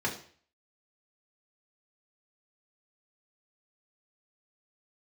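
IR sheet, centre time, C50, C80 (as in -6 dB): 20 ms, 10.0 dB, 13.5 dB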